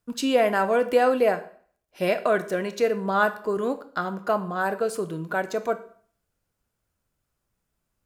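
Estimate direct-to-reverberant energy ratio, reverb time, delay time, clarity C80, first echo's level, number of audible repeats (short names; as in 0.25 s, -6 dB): 10.0 dB, 0.50 s, none, 18.0 dB, none, none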